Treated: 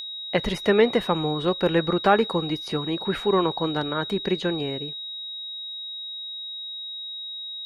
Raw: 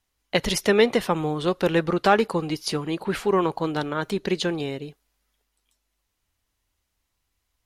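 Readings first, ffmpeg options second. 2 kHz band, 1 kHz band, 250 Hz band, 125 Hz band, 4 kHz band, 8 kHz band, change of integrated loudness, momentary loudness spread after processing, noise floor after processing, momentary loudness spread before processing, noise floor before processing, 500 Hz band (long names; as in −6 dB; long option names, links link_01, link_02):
−1.5 dB, 0.0 dB, 0.0 dB, 0.0 dB, +5.5 dB, below −10 dB, −1.5 dB, 12 LU, −35 dBFS, 8 LU, −77 dBFS, 0.0 dB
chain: -filter_complex "[0:a]aeval=exprs='val(0)+0.0501*sin(2*PI*3800*n/s)':channel_layout=same,acrossover=split=2600[link_01][link_02];[link_02]acompressor=threshold=-39dB:ratio=4:attack=1:release=60[link_03];[link_01][link_03]amix=inputs=2:normalize=0"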